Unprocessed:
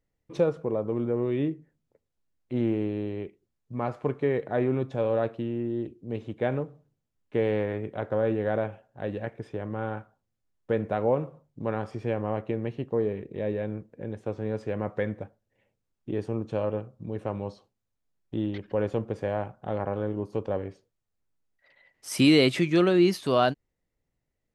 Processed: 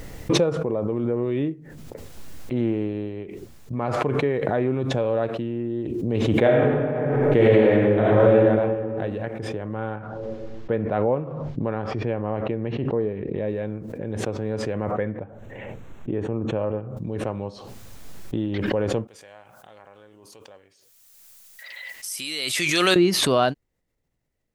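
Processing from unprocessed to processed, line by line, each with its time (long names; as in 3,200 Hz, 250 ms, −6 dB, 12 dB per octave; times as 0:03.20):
0:02.93–0:03.73: expander for the loud parts, over −44 dBFS
0:06.41–0:08.36: thrown reverb, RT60 2 s, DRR −7 dB
0:09.96–0:13.48: high-frequency loss of the air 190 metres
0:14.91–0:16.97: moving average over 9 samples
0:19.07–0:22.96: first-order pre-emphasis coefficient 0.97
whole clip: background raised ahead of every attack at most 22 dB per second; level +2 dB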